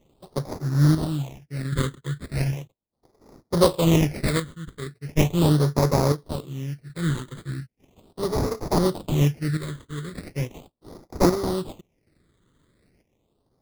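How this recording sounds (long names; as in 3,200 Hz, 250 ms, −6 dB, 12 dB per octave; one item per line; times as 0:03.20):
chopped level 0.58 Hz, depth 60%, duty 55%
aliases and images of a low sample rate 1,600 Hz, jitter 20%
phaser sweep stages 8, 0.38 Hz, lowest notch 730–2,900 Hz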